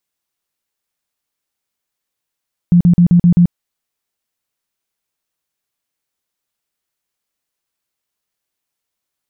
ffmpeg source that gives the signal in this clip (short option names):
-f lavfi -i "aevalsrc='0.562*sin(2*PI*174*mod(t,0.13))*lt(mod(t,0.13),15/174)':d=0.78:s=44100"